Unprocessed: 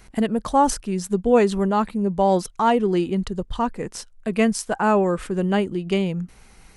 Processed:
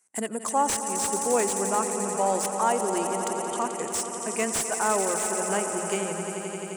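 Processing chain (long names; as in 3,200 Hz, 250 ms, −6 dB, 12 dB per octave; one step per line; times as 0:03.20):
meter weighting curve A
noise gate −49 dBFS, range −23 dB
high-pass filter 94 Hz
high shelf with overshoot 5,600 Hz +13 dB, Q 3
mains-hum notches 60/120/180 Hz
in parallel at 0 dB: downward compressor, threshold −31 dBFS, peak gain reduction 20.5 dB
on the sum: soft clipping −1.5 dBFS, distortion −22 dB
on a send: echo that builds up and dies away 87 ms, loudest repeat 5, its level −12 dB
on the sum: slew-rate limiting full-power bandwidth 750 Hz
level −6 dB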